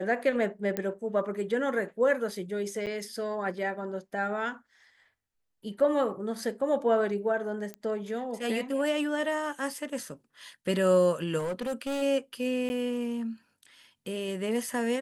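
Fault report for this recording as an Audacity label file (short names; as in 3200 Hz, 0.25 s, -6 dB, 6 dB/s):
0.770000	0.770000	pop -16 dBFS
2.860000	2.870000	gap 7.8 ms
5.800000	5.800000	gap 3.3 ms
7.740000	7.740000	pop -24 dBFS
11.380000	12.030000	clipped -28 dBFS
12.690000	12.700000	gap 10 ms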